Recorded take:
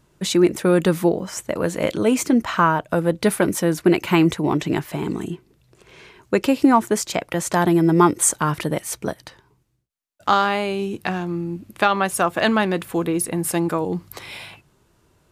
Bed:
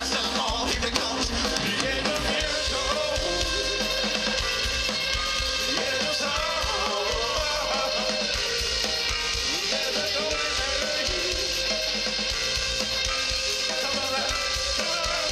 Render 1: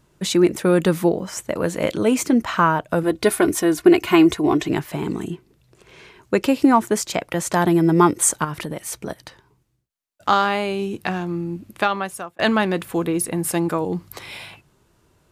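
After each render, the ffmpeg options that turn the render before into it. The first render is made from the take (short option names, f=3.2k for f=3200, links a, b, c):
-filter_complex "[0:a]asettb=1/sr,asplit=3[a][b][c];[a]atrim=end=3.034[d];[b]atrim=start=3.03:end=4.69,asetpts=PTS-STARTPTS,afade=t=in:d=0.004:c=qsin,afade=t=out:st=1.656:d=0.004:c=qsin,aecho=1:1:2.8:0.65,atrim=end_sample=73206[e];[c]atrim=start=4.686[f];[d][e]acrossfade=d=0.004:c1=hsin:c2=qsin[g];[g][f]acrossfade=d=0.004:c1=qsin:c2=hsin,asettb=1/sr,asplit=3[h][i][j];[h]atrim=end=8.444[k];[i]atrim=start=8.44:end=9.1,asetpts=PTS-STARTPTS,afade=t=in:d=0.004:c=qsin,afade=t=out:st=0.656:d=0.004:c=qsin,acompressor=threshold=-24dB:ratio=6:attack=3.2:release=140:knee=1:detection=peak[l];[j]atrim=start=9.096[m];[k][l]acrossfade=d=0.004:c1=hsin:c2=qsin[n];[n][m]acrossfade=d=0.004:c1=qsin:c2=hsin,asplit=2[o][p];[o]atrim=end=12.39,asetpts=PTS-STARTPTS,afade=t=out:st=11.7:d=0.69[q];[p]atrim=start=12.39,asetpts=PTS-STARTPTS,afade=t=in:d=0.004:c=hsin[r];[q][r]concat=n=2:v=0:a=1"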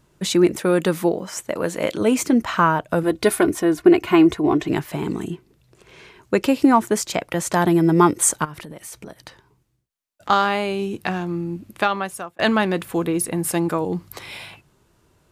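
-filter_complex "[0:a]asettb=1/sr,asplit=3[a][b][c];[a]atrim=end=0.594[d];[b]atrim=start=0.59:end=2.01,asetpts=PTS-STARTPTS,afade=t=in:d=0.004:c=qsin,afade=t=out:st=1.416:d=0.004:c=qsin,lowshelf=f=150:g=-9.5[e];[c]atrim=start=2.006[f];[d][e]acrossfade=d=0.004:c1=hsin:c2=qsin[g];[g][f]acrossfade=d=0.004:c1=qsin:c2=hsin,asettb=1/sr,asplit=3[h][i][j];[h]atrim=end=3.434[k];[i]atrim=start=3.43:end=4.68,asetpts=PTS-STARTPTS,afade=t=in:d=0.004:c=qsin,afade=t=out:st=1.246:d=0.004:c=qsin,highshelf=f=2.9k:g=-8[l];[j]atrim=start=4.676[m];[k][l]acrossfade=d=0.004:c1=hsin:c2=qsin[n];[n][m]acrossfade=d=0.004:c1=qsin:c2=hsin,asettb=1/sr,asplit=3[o][p][q];[o]atrim=end=8.454[r];[p]atrim=start=8.45:end=10.3,asetpts=PTS-STARTPTS,afade=t=in:d=0.004:c=qsin,afade=t=out:st=1.846:d=0.004:c=qsin,acompressor=threshold=-33dB:ratio=6:attack=3.2:release=140:knee=1:detection=peak[s];[q]atrim=start=10.296[t];[r][s]acrossfade=d=0.004:c1=hsin:c2=qsin[u];[u][t]acrossfade=d=0.004:c1=qsin:c2=hsin"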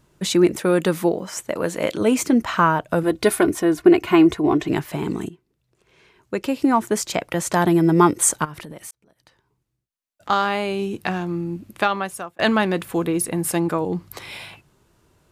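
-filter_complex "[0:a]asettb=1/sr,asplit=3[a][b][c];[a]atrim=end=13.574[d];[b]atrim=start=13.57:end=14.11,asetpts=PTS-STARTPTS,afade=t=in:d=0.004:c=qsin,afade=t=out:st=0.536:d=0.004:c=qsin,highshelf=f=5.8k:g=-4.5[e];[c]atrim=start=14.106[f];[d][e]acrossfade=d=0.004:c1=hsin:c2=qsin[g];[g][f]acrossfade=d=0.004:c1=qsin:c2=hsin,asplit=3[h][i][j];[h]atrim=end=5.29,asetpts=PTS-STARTPTS,afade=t=out:st=5.286:d=0.004:c=hsin:silence=0.188365[k];[i]atrim=start=5.29:end=8.91,asetpts=PTS-STARTPTS,afade=t=in:d=1.78:c=qua:silence=0.188365,afade=t=out:st=3.616:d=0.004:c=hsin[l];[j]atrim=start=8.91,asetpts=PTS-STARTPTS,afade=t=in:d=1.88[m];[k][l][m]concat=n=3:v=0:a=1"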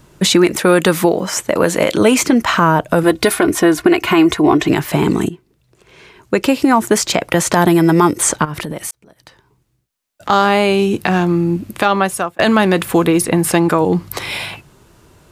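-filter_complex "[0:a]acrossover=split=740|5600[a][b][c];[a]acompressor=threshold=-23dB:ratio=4[d];[b]acompressor=threshold=-25dB:ratio=4[e];[c]acompressor=threshold=-34dB:ratio=4[f];[d][e][f]amix=inputs=3:normalize=0,alimiter=level_in=12.5dB:limit=-1dB:release=50:level=0:latency=1"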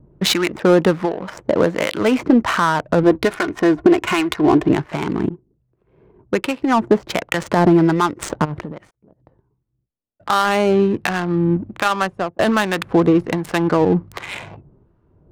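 -filter_complex "[0:a]acrossover=split=1000[a][b];[a]aeval=exprs='val(0)*(1-0.7/2+0.7/2*cos(2*PI*1.3*n/s))':c=same[c];[b]aeval=exprs='val(0)*(1-0.7/2-0.7/2*cos(2*PI*1.3*n/s))':c=same[d];[c][d]amix=inputs=2:normalize=0,adynamicsmooth=sensitivity=1.5:basefreq=510"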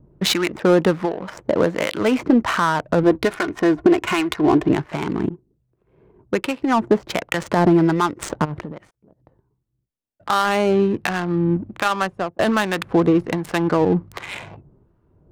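-af "volume=-2dB"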